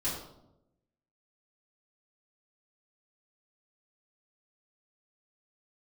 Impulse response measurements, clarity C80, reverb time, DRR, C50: 6.5 dB, 0.85 s, -10.5 dB, 3.0 dB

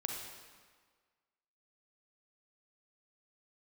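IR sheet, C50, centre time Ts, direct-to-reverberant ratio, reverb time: 2.0 dB, 65 ms, 1.0 dB, 1.6 s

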